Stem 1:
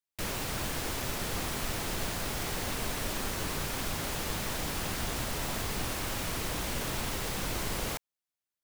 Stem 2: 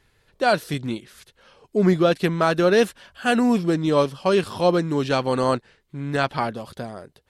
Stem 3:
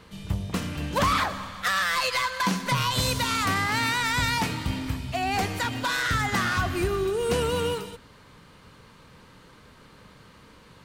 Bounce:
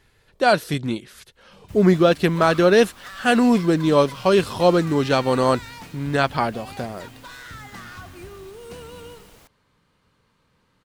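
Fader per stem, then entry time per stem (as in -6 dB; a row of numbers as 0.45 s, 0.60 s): -17.0 dB, +2.5 dB, -14.0 dB; 1.50 s, 0.00 s, 1.40 s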